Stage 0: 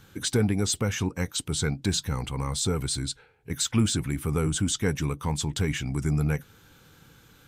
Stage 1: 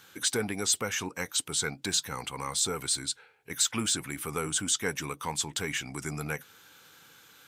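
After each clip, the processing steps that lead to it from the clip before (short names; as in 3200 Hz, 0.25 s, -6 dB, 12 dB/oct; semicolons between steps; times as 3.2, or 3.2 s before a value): HPF 990 Hz 6 dB/oct; dynamic EQ 3800 Hz, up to -3 dB, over -41 dBFS, Q 0.72; gain +3.5 dB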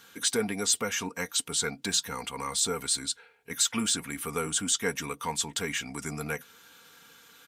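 comb 4.3 ms, depth 49%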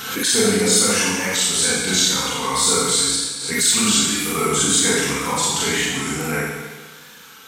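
wow and flutter 91 cents; Schroeder reverb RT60 1.3 s, combs from 29 ms, DRR -8.5 dB; backwards sustainer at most 51 dB/s; gain +3 dB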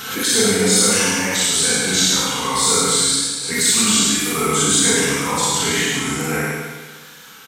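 echo 0.106 s -3.5 dB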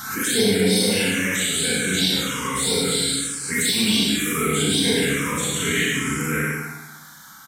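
envelope phaser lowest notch 430 Hz, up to 1300 Hz, full sweep at -11.5 dBFS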